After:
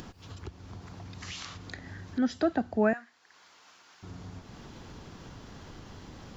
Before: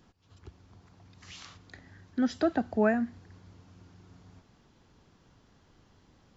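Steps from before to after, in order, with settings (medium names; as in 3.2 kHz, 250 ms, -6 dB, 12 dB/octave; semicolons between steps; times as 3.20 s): upward compressor, threshold -32 dBFS; 2.93–4.03 s: high-pass 1.1 kHz 12 dB/octave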